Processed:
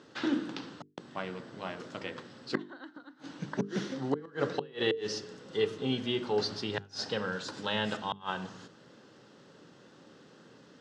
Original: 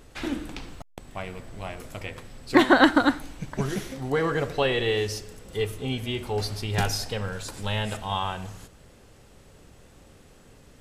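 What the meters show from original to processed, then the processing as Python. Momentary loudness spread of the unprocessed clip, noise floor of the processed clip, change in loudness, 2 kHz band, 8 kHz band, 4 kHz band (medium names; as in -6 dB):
19 LU, -58 dBFS, -8.5 dB, -11.0 dB, -10.5 dB, -5.5 dB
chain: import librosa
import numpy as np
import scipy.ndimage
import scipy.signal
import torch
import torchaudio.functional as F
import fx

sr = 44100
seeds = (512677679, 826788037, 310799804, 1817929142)

y = fx.gate_flip(x, sr, shuts_db=-15.0, range_db=-31)
y = fx.cabinet(y, sr, low_hz=150.0, low_slope=24, high_hz=5600.0, hz=(310.0, 700.0, 1500.0, 2300.0), db=(3, -6, 3, -9))
y = fx.hum_notches(y, sr, base_hz=50, count=9)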